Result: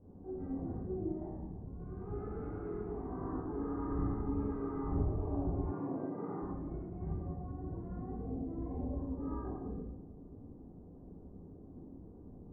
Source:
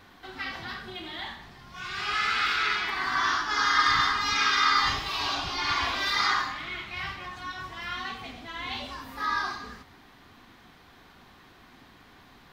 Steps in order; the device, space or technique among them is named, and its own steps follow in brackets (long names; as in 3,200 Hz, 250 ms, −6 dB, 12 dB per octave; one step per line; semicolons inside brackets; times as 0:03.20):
next room (low-pass filter 490 Hz 24 dB per octave; convolution reverb RT60 0.90 s, pre-delay 18 ms, DRR −8 dB)
0:05.71–0:06.42: Chebyshev band-pass filter 120–2,800 Hz, order 5
level −3 dB